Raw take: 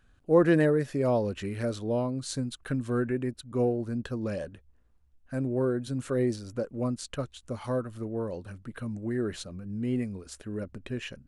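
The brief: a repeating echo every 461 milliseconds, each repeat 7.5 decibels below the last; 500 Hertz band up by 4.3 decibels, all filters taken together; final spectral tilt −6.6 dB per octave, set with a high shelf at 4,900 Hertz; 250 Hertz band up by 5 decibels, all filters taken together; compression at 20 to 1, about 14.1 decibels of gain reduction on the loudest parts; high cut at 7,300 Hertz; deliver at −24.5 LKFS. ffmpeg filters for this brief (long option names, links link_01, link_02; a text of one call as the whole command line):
ffmpeg -i in.wav -af "lowpass=7300,equalizer=frequency=250:width_type=o:gain=5,equalizer=frequency=500:width_type=o:gain=3.5,highshelf=frequency=4900:gain=8,acompressor=threshold=-25dB:ratio=20,aecho=1:1:461|922|1383|1844|2305:0.422|0.177|0.0744|0.0312|0.0131,volume=6.5dB" out.wav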